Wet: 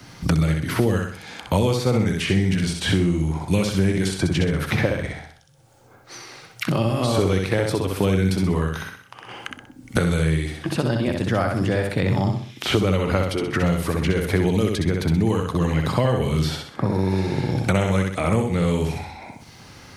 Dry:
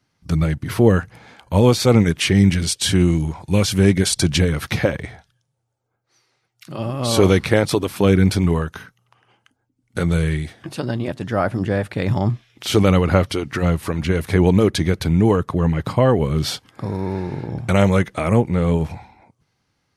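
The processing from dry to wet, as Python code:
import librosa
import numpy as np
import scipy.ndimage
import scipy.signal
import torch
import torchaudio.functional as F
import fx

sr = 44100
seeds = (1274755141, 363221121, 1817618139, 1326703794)

p1 = x + fx.echo_feedback(x, sr, ms=63, feedback_pct=35, wet_db=-4.0, dry=0)
p2 = fx.band_squash(p1, sr, depth_pct=100)
y = F.gain(torch.from_numpy(p2), -5.5).numpy()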